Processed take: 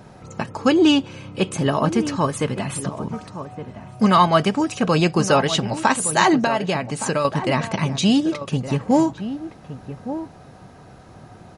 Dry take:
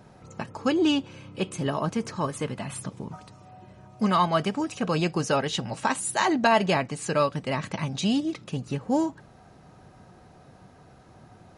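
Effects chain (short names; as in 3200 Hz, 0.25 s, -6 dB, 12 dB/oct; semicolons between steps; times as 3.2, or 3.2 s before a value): 6.39–7.25 compressor 5:1, threshold -26 dBFS, peak gain reduction 10 dB; outdoor echo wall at 200 m, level -11 dB; gain +7.5 dB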